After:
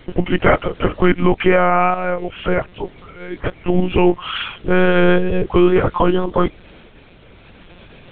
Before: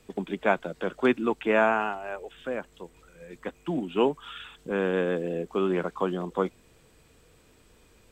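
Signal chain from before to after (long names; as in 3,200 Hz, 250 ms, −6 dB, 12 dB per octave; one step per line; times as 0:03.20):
pitch glide at a constant tempo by −2.5 semitones ending unshifted
high-shelf EQ 2,300 Hz +3.5 dB
one-pitch LPC vocoder at 8 kHz 180 Hz
floating-point word with a short mantissa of 8 bits
tape wow and flutter 29 cents
boost into a limiter +17.5 dB
level −1 dB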